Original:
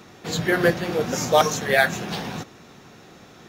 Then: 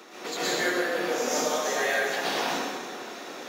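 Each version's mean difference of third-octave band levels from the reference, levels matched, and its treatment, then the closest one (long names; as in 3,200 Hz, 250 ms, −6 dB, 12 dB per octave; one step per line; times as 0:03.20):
11.0 dB: high-pass filter 300 Hz 24 dB per octave
downward compressor 6 to 1, threshold −33 dBFS, peak gain reduction 20 dB
dense smooth reverb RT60 1.7 s, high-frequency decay 0.8×, pre-delay 105 ms, DRR −9.5 dB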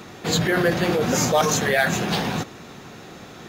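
4.5 dB: notch filter 5,600 Hz, Q 16
in parallel at +0.5 dB: compressor whose output falls as the input rises −25 dBFS, ratio −0.5
on the sum: soft clipping −4.5 dBFS, distortion −26 dB
level −2 dB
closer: second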